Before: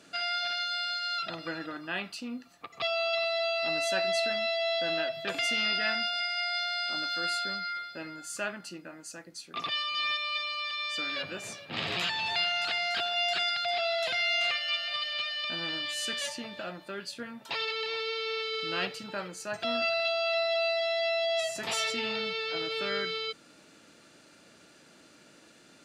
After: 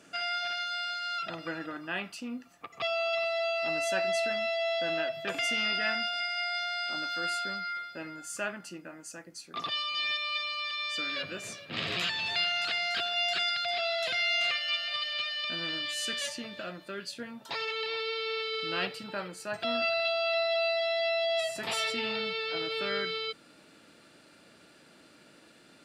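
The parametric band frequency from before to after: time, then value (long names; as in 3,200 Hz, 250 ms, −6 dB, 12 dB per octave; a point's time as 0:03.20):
parametric band −8.5 dB 0.36 octaves
0:09.30 4,100 Hz
0:10.29 840 Hz
0:17.08 840 Hz
0:17.84 6,400 Hz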